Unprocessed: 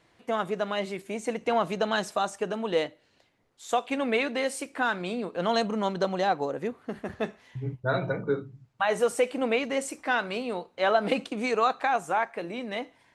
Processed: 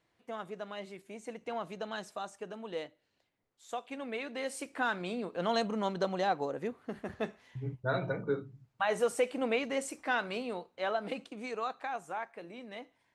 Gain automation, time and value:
4.2 s -12.5 dB
4.65 s -5 dB
10.41 s -5 dB
11.15 s -12 dB

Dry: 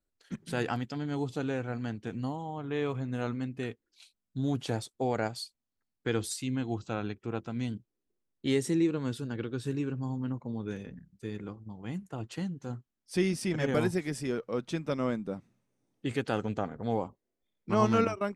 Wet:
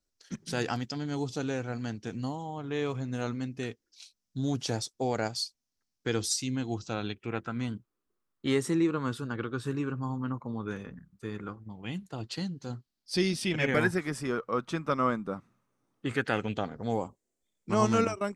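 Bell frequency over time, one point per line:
bell +13 dB 0.72 oct
6.87 s 5600 Hz
7.58 s 1200 Hz
11.42 s 1200 Hz
12.13 s 4500 Hz
13.25 s 4500 Hz
14.04 s 1200 Hz
16.1 s 1200 Hz
16.94 s 7500 Hz

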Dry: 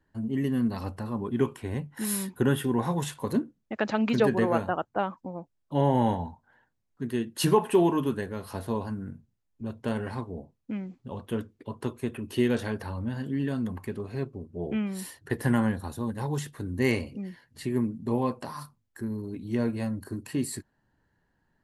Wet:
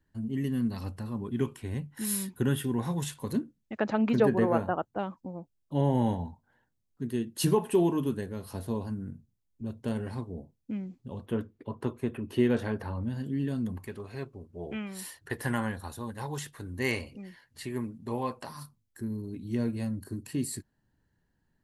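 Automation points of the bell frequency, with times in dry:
bell -8 dB 2.8 oct
780 Hz
from 3.78 s 4800 Hz
from 4.83 s 1300 Hz
from 11.26 s 7800 Hz
from 13.03 s 1200 Hz
from 13.87 s 210 Hz
from 18.49 s 1000 Hz

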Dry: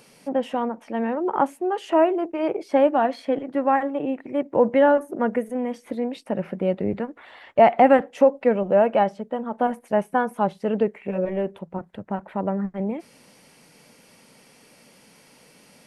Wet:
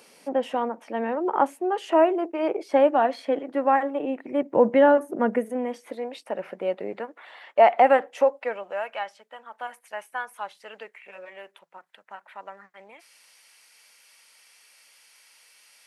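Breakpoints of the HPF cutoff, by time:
4.05 s 300 Hz
4.52 s 140 Hz
5.28 s 140 Hz
5.99 s 510 Hz
8.15 s 510 Hz
8.87 s 1500 Hz

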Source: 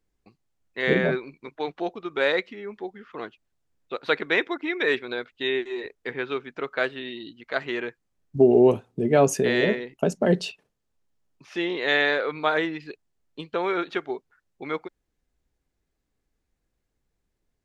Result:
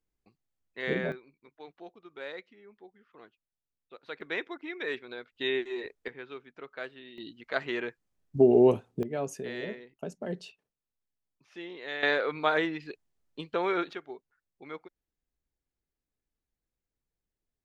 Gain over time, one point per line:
-9 dB
from 1.12 s -18 dB
from 4.21 s -11 dB
from 5.36 s -4 dB
from 6.08 s -14 dB
from 7.18 s -3.5 dB
from 9.03 s -15 dB
from 12.03 s -3 dB
from 13.93 s -12 dB

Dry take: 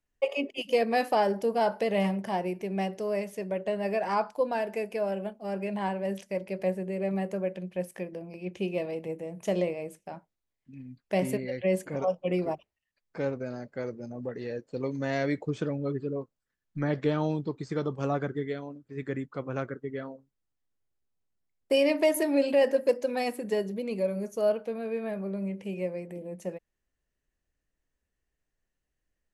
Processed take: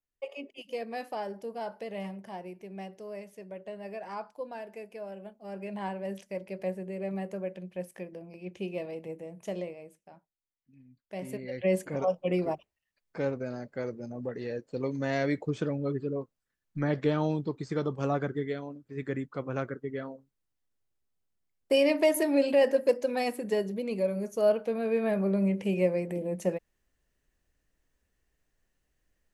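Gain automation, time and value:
5.15 s -11 dB
5.8 s -4.5 dB
9.25 s -4.5 dB
10.01 s -12.5 dB
11.14 s -12.5 dB
11.65 s 0 dB
24.24 s 0 dB
25.23 s +6.5 dB

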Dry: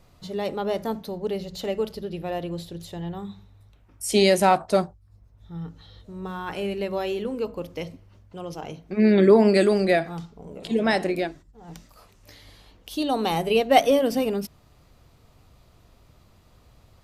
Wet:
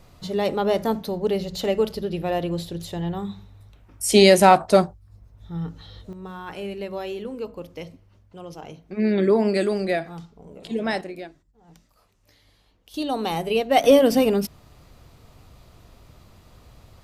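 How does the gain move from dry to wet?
+5 dB
from 6.13 s -3.5 dB
from 11.01 s -10 dB
from 12.94 s -1.5 dB
from 13.84 s +5.5 dB

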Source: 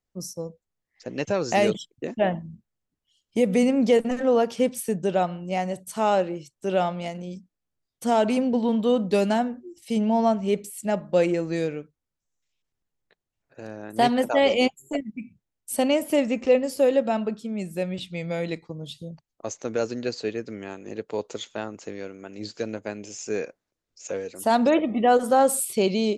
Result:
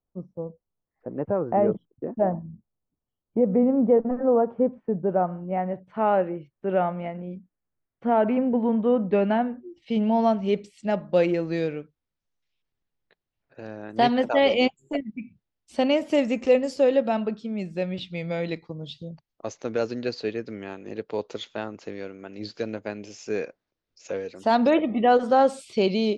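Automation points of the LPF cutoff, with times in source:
LPF 24 dB/oct
4.95 s 1200 Hz
5.97 s 2100 Hz
8.97 s 2100 Hz
10.32 s 4900 Hz
15.88 s 4900 Hz
16.52 s 9800 Hz
16.9 s 5200 Hz

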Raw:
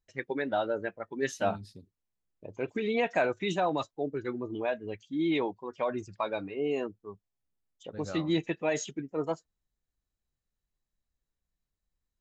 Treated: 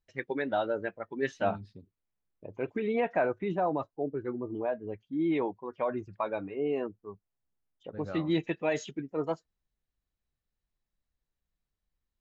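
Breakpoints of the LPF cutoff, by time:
0.65 s 4700 Hz
1.74 s 2500 Hz
2.59 s 2500 Hz
3.62 s 1200 Hz
4.89 s 1200 Hz
5.49 s 2100 Hz
8 s 2100 Hz
8.45 s 4500 Hz

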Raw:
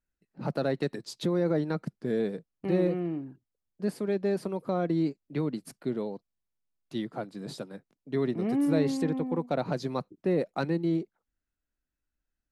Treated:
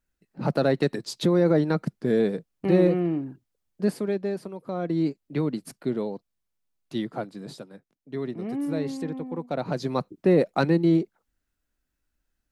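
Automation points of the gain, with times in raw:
3.84 s +6.5 dB
4.55 s -5 dB
5.09 s +4 dB
7.2 s +4 dB
7.64 s -3 dB
9.32 s -3 dB
10.13 s +7.5 dB

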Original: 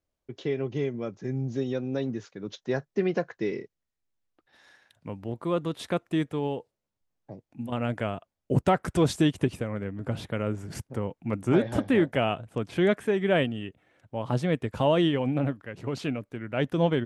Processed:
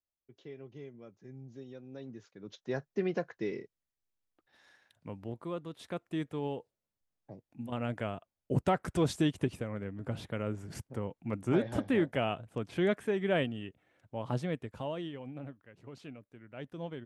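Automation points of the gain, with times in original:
1.83 s -18 dB
2.79 s -6 dB
5.27 s -6 dB
5.64 s -13 dB
6.47 s -6 dB
14.32 s -6 dB
15.04 s -17 dB

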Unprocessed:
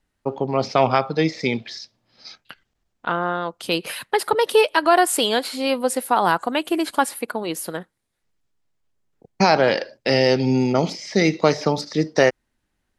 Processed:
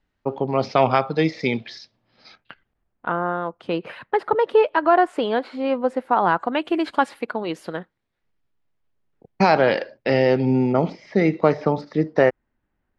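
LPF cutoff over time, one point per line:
1.74 s 4100 Hz
3.14 s 1600 Hz
6.02 s 1600 Hz
6.79 s 3200 Hz
9.71 s 3200 Hz
10.56 s 1800 Hz

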